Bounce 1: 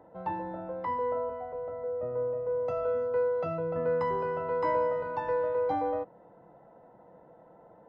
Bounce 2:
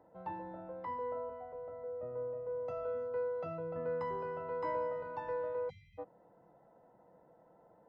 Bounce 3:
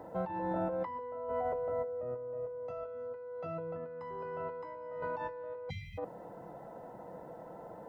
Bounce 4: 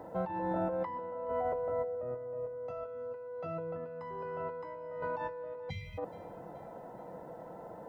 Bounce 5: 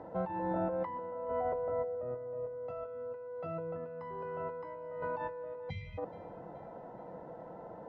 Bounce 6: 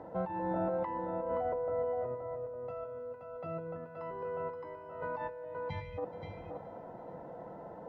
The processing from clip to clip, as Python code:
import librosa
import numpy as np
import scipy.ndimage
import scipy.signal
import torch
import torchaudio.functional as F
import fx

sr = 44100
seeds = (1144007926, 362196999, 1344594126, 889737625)

y1 = fx.spec_erase(x, sr, start_s=5.7, length_s=0.28, low_hz=210.0, high_hz=1900.0)
y1 = y1 * librosa.db_to_amplitude(-8.5)
y2 = fx.over_compress(y1, sr, threshold_db=-48.0, ratio=-1.0)
y2 = y2 * librosa.db_to_amplitude(8.5)
y3 = fx.echo_feedback(y2, sr, ms=425, feedback_pct=48, wet_db=-20.0)
y3 = y3 * librosa.db_to_amplitude(1.0)
y4 = fx.air_absorb(y3, sr, metres=170.0)
y5 = y4 + 10.0 ** (-6.5 / 20.0) * np.pad(y4, (int(525 * sr / 1000.0), 0))[:len(y4)]